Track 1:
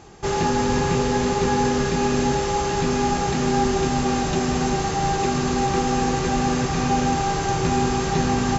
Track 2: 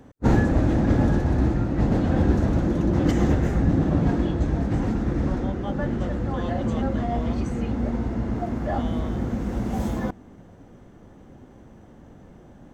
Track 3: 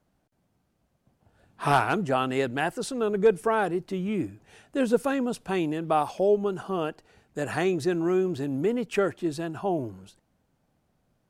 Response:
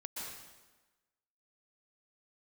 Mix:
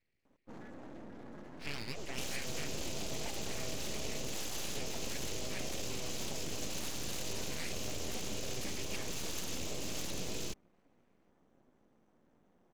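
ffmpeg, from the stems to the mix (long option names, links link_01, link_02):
-filter_complex "[0:a]alimiter=limit=-19.5dB:level=0:latency=1:release=17,adelay=1950,volume=-1dB[link_01];[1:a]highpass=frequency=170:width=0.5412,highpass=frequency=170:width=1.3066,alimiter=limit=-22dB:level=0:latency=1:release=26,aeval=exprs='max(val(0),0)':channel_layout=same,adelay=250,volume=-16.5dB[link_02];[2:a]lowpass=frequency=2100:width_type=q:width=14,volume=-10dB[link_03];[link_01][link_03]amix=inputs=2:normalize=0,firequalizer=gain_entry='entry(260,0);entry(920,-24);entry(2700,6)':delay=0.05:min_phase=1,acompressor=threshold=-34dB:ratio=6,volume=0dB[link_04];[link_02][link_04]amix=inputs=2:normalize=0,aeval=exprs='abs(val(0))':channel_layout=same"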